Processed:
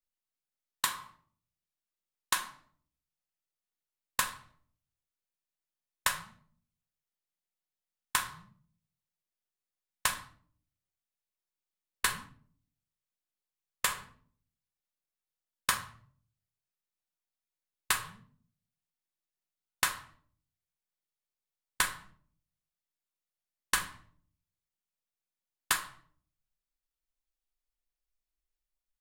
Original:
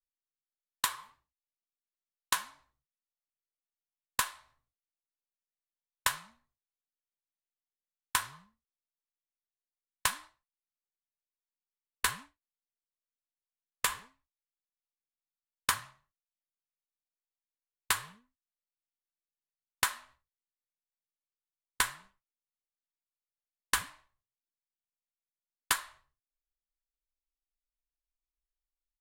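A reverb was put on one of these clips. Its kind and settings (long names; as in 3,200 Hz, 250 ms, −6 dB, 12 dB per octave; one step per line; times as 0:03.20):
rectangular room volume 550 cubic metres, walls furnished, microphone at 0.97 metres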